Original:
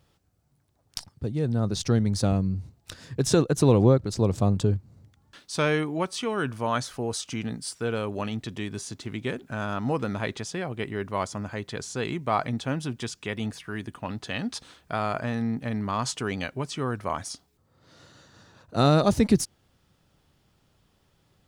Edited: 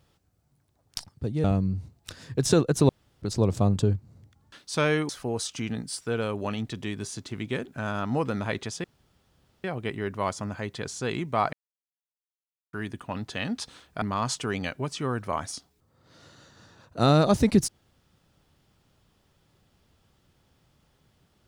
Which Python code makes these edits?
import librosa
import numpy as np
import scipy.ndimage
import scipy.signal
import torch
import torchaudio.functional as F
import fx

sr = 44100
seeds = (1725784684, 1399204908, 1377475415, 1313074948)

y = fx.edit(x, sr, fx.cut(start_s=1.44, length_s=0.81),
    fx.room_tone_fill(start_s=3.7, length_s=0.33),
    fx.cut(start_s=5.9, length_s=0.93),
    fx.insert_room_tone(at_s=10.58, length_s=0.8),
    fx.silence(start_s=12.47, length_s=1.2),
    fx.cut(start_s=14.96, length_s=0.83), tone=tone)